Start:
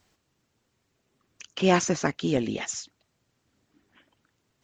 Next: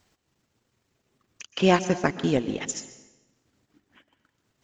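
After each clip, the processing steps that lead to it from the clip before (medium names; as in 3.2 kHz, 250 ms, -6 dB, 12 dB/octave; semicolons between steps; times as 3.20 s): transient shaper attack +2 dB, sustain -12 dB; reverberation RT60 1.1 s, pre-delay 113 ms, DRR 13.5 dB; trim +1 dB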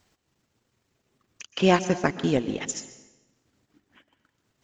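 no audible change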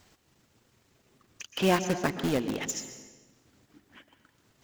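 companding laws mixed up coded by mu; in parallel at -7.5 dB: integer overflow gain 19.5 dB; on the sum: trim -5.5 dB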